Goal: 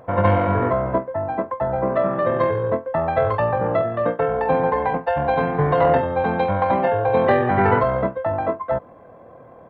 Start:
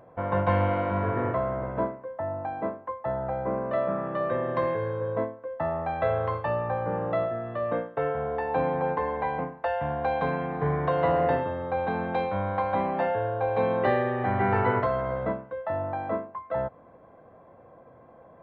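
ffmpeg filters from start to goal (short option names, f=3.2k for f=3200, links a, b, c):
-af "acontrast=41,atempo=1.9,volume=2.5dB"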